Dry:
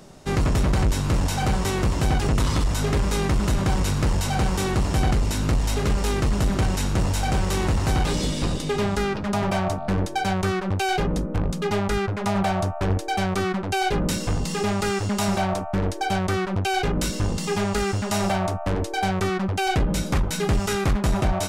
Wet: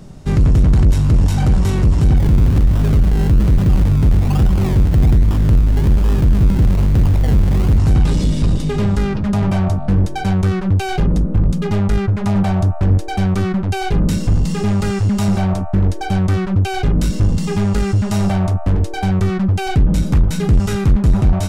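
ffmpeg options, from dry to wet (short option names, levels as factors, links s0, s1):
-filter_complex "[0:a]asettb=1/sr,asplit=3[s0][s1][s2];[s0]atrim=end=2.164[s3];[s1]atrim=start=2.16:end=7.78,asetpts=PTS-STARTPTS,afade=t=in:d=0.004:c=qsin,afade=t=out:st=5.616:d=0.004:c=qsin,acrusher=samples=29:mix=1:aa=0.000001:lfo=1:lforange=17.4:lforate=1.2[s4];[s2]atrim=start=7.776[s5];[s3][s4]acrossfade=d=0.004:c1=hsin:c2=qsin[s6];[s6][s5]acrossfade=d=0.004:c1=qsin:c2=hsin,bass=f=250:g=14,treble=f=4000:g=-1,acontrast=66,volume=0.501"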